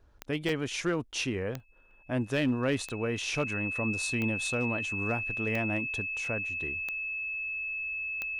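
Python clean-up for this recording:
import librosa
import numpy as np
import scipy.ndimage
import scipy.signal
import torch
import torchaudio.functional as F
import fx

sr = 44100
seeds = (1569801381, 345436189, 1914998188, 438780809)

y = fx.fix_declip(x, sr, threshold_db=-20.5)
y = fx.fix_declick_ar(y, sr, threshold=10.0)
y = fx.notch(y, sr, hz=2600.0, q=30.0)
y = fx.fix_interpolate(y, sr, at_s=(0.49, 1.6, 1.91, 6.25), length_ms=1.4)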